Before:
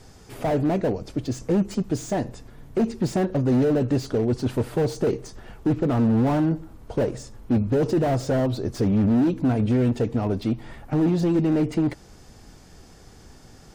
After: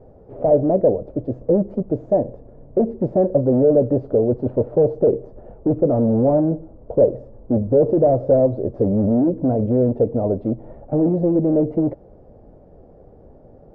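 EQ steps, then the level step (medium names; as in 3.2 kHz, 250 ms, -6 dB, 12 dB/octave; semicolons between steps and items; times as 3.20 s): resonant low-pass 570 Hz, resonance Q 4.5; 0.0 dB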